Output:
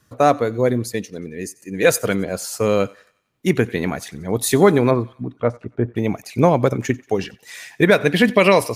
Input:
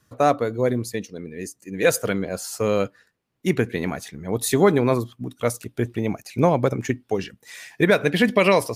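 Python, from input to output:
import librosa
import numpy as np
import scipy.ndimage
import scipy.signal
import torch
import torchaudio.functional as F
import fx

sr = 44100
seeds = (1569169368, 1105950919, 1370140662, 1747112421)

p1 = fx.lowpass(x, sr, hz=fx.line((4.9, 2000.0), (5.95, 1100.0)), slope=12, at=(4.9, 5.95), fade=0.02)
p2 = p1 + fx.echo_thinned(p1, sr, ms=91, feedback_pct=52, hz=690.0, wet_db=-22, dry=0)
y = p2 * librosa.db_to_amplitude(3.5)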